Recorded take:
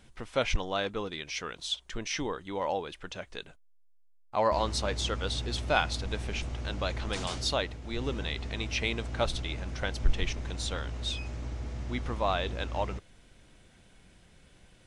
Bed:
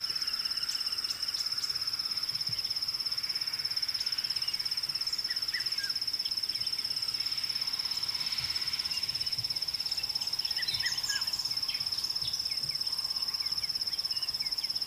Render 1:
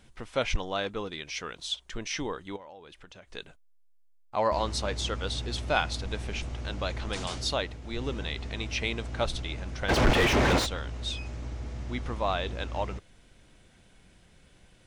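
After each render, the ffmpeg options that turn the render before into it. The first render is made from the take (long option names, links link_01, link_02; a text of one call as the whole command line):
ffmpeg -i in.wav -filter_complex "[0:a]asettb=1/sr,asplit=3[link_01][link_02][link_03];[link_01]atrim=end=2.564[link_04];[link_02]atrim=start=2.56:end=3.32,asetpts=PTS-STARTPTS,afade=type=in:duration=0.004:curve=qsin,afade=type=out:start_time=0.756:duration=0.004:curve=qsin,acompressor=threshold=-47dB:ratio=4:attack=3.2:release=140:knee=1:detection=peak[link_05];[link_03]atrim=start=3.316[link_06];[link_04][link_05]acrossfade=duration=0.004:curve1=hsin:curve2=qsin[link_07];[link_07][link_06]acrossfade=duration=0.004:curve1=qsin:curve2=hsin,asplit=3[link_08][link_09][link_10];[link_08]afade=type=out:start_time=9.88:duration=0.02[link_11];[link_09]asplit=2[link_12][link_13];[link_13]highpass=frequency=720:poles=1,volume=42dB,asoftclip=type=tanh:threshold=-12dB[link_14];[link_12][link_14]amix=inputs=2:normalize=0,lowpass=frequency=1300:poles=1,volume=-6dB,afade=type=in:start_time=9.88:duration=0.02,afade=type=out:start_time=10.65:duration=0.02[link_15];[link_10]afade=type=in:start_time=10.65:duration=0.02[link_16];[link_11][link_15][link_16]amix=inputs=3:normalize=0" out.wav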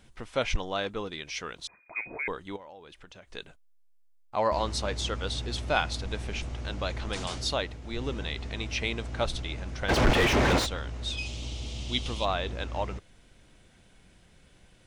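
ffmpeg -i in.wav -filter_complex "[0:a]asettb=1/sr,asplit=3[link_01][link_02][link_03];[link_01]atrim=end=1.674[link_04];[link_02]atrim=start=1.67:end=2.28,asetpts=PTS-STARTPTS,afade=type=in:duration=0.004:curve=qsin,afade=type=out:start_time=0.606:duration=0.004:curve=qsin,lowpass=frequency=2100:width_type=q:width=0.5098,lowpass=frequency=2100:width_type=q:width=0.6013,lowpass=frequency=2100:width_type=q:width=0.9,lowpass=frequency=2100:width_type=q:width=2.563,afreqshift=-2500[link_05];[link_03]atrim=start=2.276[link_06];[link_04][link_05]acrossfade=duration=0.004:curve1=hsin:curve2=qsin[link_07];[link_07][link_06]acrossfade=duration=0.004:curve1=qsin:curve2=hsin,asplit=3[link_08][link_09][link_10];[link_08]afade=type=out:start_time=11.17:duration=0.02[link_11];[link_09]highshelf=frequency=2300:width_type=q:width=3:gain=10.5,afade=type=in:start_time=11.17:duration=0.02,afade=type=out:start_time=12.24:duration=0.02[link_12];[link_10]afade=type=in:start_time=12.24:duration=0.02[link_13];[link_11][link_12][link_13]amix=inputs=3:normalize=0" out.wav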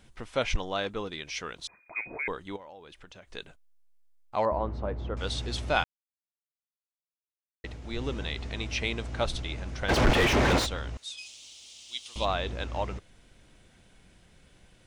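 ffmpeg -i in.wav -filter_complex "[0:a]asettb=1/sr,asplit=3[link_01][link_02][link_03];[link_01]atrim=end=4.454[link_04];[link_02]atrim=start=4.45:end=5.17,asetpts=PTS-STARTPTS,afade=type=in:duration=0.004:curve=qsin,afade=type=out:start_time=0.716:duration=0.004:curve=qsin,lowpass=1000[link_05];[link_03]atrim=start=5.166[link_06];[link_04][link_05]acrossfade=duration=0.004:curve1=hsin:curve2=qsin[link_07];[link_07][link_06]acrossfade=duration=0.004:curve1=qsin:curve2=hsin,asettb=1/sr,asplit=3[link_08][link_09][link_10];[link_08]atrim=end=10.974[link_11];[link_09]atrim=start=10.97:end=12.16,asetpts=PTS-STARTPTS,afade=type=in:duration=0.004:curve=qsin,afade=type=out:start_time=1.186:duration=0.004:curve=qsin,aderivative[link_12];[link_10]atrim=start=12.156[link_13];[link_11][link_12]acrossfade=duration=0.004:curve1=hsin:curve2=qsin[link_14];[link_14][link_13]acrossfade=duration=0.004:curve1=qsin:curve2=hsin,asplit=3[link_15][link_16][link_17];[link_15]atrim=end=5.84,asetpts=PTS-STARTPTS,afade=type=out:start_time=5.836:duration=0.004:curve=hsin[link_18];[link_16]atrim=start=5.84:end=7.64,asetpts=PTS-STARTPTS,volume=0[link_19];[link_17]atrim=start=7.64,asetpts=PTS-STARTPTS,afade=type=in:duration=0.004:curve=hsin[link_20];[link_18][link_19][link_20]concat=n=3:v=0:a=1" out.wav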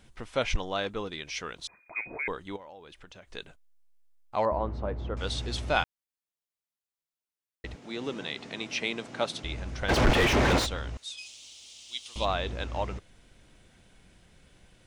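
ffmpeg -i in.wav -filter_complex "[0:a]asettb=1/sr,asplit=3[link_01][link_02][link_03];[link_01]atrim=end=7.754[link_04];[link_02]atrim=start=7.75:end=9.44,asetpts=PTS-STARTPTS,afade=type=in:duration=0.004:curve=qsin,afade=type=out:start_time=1.686:duration=0.004:curve=qsin,highpass=frequency=160:width=0.5412,highpass=frequency=160:width=1.3066[link_05];[link_03]atrim=start=9.436[link_06];[link_04][link_05]acrossfade=duration=0.004:curve1=hsin:curve2=qsin[link_07];[link_07][link_06]acrossfade=duration=0.004:curve1=qsin:curve2=hsin" out.wav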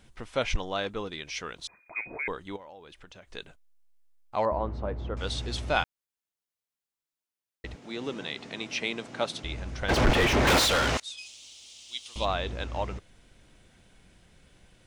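ffmpeg -i in.wav -filter_complex "[0:a]asettb=1/sr,asplit=3[link_01][link_02][link_03];[link_01]atrim=end=10.474[link_04];[link_02]atrim=start=10.47:end=11,asetpts=PTS-STARTPTS,afade=type=in:duration=0.004:curve=qsin,afade=type=out:start_time=0.526:duration=0.004:curve=qsin,asplit=2[link_05][link_06];[link_06]highpass=frequency=720:poles=1,volume=34dB,asoftclip=type=tanh:threshold=-16.5dB[link_07];[link_05][link_07]amix=inputs=2:normalize=0,lowpass=frequency=6400:poles=1,volume=-6dB[link_08];[link_03]atrim=start=10.996[link_09];[link_04][link_08]acrossfade=duration=0.004:curve1=hsin:curve2=qsin[link_10];[link_10][link_09]acrossfade=duration=0.004:curve1=qsin:curve2=hsin" out.wav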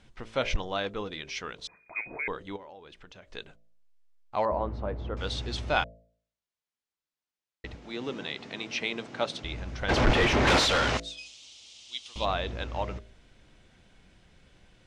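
ffmpeg -i in.wav -af "lowpass=6200,bandreject=frequency=56.04:width_type=h:width=4,bandreject=frequency=112.08:width_type=h:width=4,bandreject=frequency=168.12:width_type=h:width=4,bandreject=frequency=224.16:width_type=h:width=4,bandreject=frequency=280.2:width_type=h:width=4,bandreject=frequency=336.24:width_type=h:width=4,bandreject=frequency=392.28:width_type=h:width=4,bandreject=frequency=448.32:width_type=h:width=4,bandreject=frequency=504.36:width_type=h:width=4,bandreject=frequency=560.4:width_type=h:width=4,bandreject=frequency=616.44:width_type=h:width=4,bandreject=frequency=672.48:width_type=h:width=4" out.wav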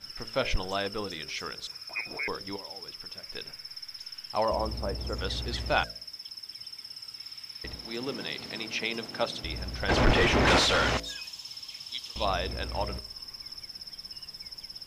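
ffmpeg -i in.wav -i bed.wav -filter_complex "[1:a]volume=-10dB[link_01];[0:a][link_01]amix=inputs=2:normalize=0" out.wav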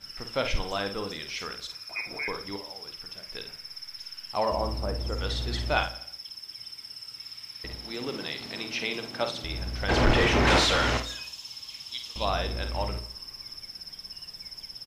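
ffmpeg -i in.wav -filter_complex "[0:a]asplit=2[link_01][link_02];[link_02]adelay=50,volume=-8dB[link_03];[link_01][link_03]amix=inputs=2:normalize=0,aecho=1:1:84|168|252|336:0.126|0.0642|0.0327|0.0167" out.wav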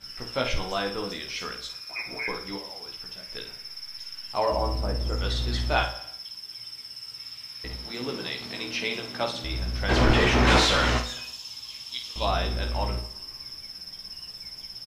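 ffmpeg -i in.wav -filter_complex "[0:a]asplit=2[link_01][link_02];[link_02]adelay=16,volume=-3.5dB[link_03];[link_01][link_03]amix=inputs=2:normalize=0,aecho=1:1:113|226|339:0.106|0.0477|0.0214" out.wav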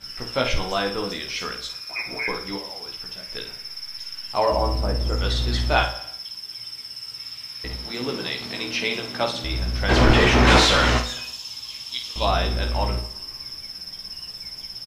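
ffmpeg -i in.wav -af "volume=4.5dB" out.wav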